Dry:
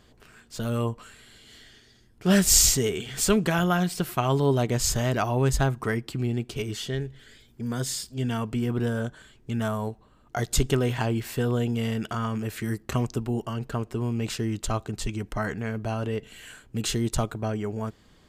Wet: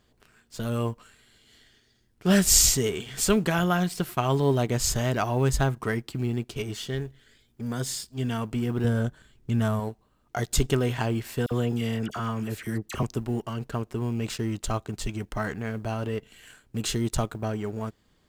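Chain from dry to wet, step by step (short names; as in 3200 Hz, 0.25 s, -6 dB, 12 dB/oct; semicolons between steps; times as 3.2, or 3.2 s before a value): G.711 law mismatch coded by A; 8.84–9.8 low shelf 190 Hz +8.5 dB; 11.46–13.03 dispersion lows, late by 52 ms, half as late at 1700 Hz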